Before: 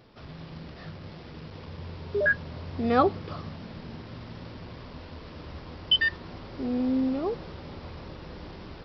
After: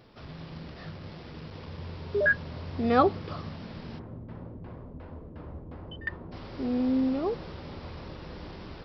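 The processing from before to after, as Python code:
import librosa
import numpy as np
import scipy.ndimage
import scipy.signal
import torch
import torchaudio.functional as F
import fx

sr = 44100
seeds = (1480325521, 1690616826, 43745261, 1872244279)

y = fx.filter_lfo_lowpass(x, sr, shape='saw_down', hz=2.8, low_hz=360.0, high_hz=1800.0, q=0.72, at=(3.98, 6.31), fade=0.02)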